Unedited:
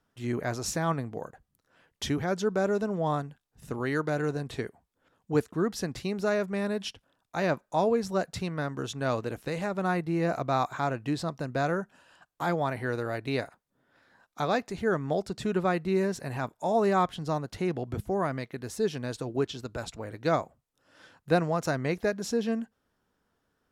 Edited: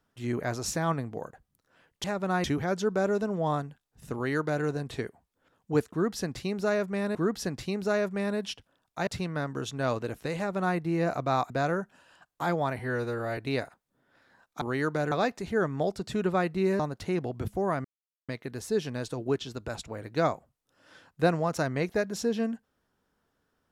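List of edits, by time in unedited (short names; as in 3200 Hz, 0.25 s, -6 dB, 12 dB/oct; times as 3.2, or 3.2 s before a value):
3.74–4.24 copy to 14.42
5.52–6.75 loop, 2 plays
7.44–8.29 cut
9.59–9.99 copy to 2.04
10.72–11.5 cut
12.79–13.18 stretch 1.5×
16.1–17.32 cut
18.37 insert silence 0.44 s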